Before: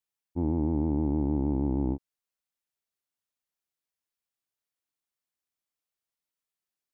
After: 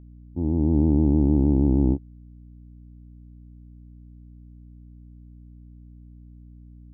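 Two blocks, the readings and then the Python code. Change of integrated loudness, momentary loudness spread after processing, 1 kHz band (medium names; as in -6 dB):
+7.5 dB, 10 LU, -0.5 dB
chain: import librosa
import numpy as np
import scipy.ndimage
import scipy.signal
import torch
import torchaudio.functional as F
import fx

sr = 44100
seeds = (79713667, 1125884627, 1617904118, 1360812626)

y = fx.fade_in_head(x, sr, length_s=0.79)
y = fx.tilt_shelf(y, sr, db=9.5, hz=860.0)
y = fx.add_hum(y, sr, base_hz=60, snr_db=20)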